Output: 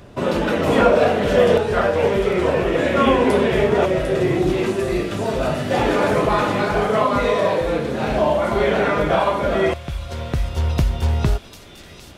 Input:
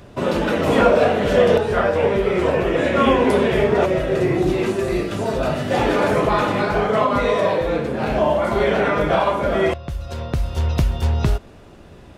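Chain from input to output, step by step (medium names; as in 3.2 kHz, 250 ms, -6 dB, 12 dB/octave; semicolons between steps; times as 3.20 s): feedback echo behind a high-pass 750 ms, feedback 68%, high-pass 3.7 kHz, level -6 dB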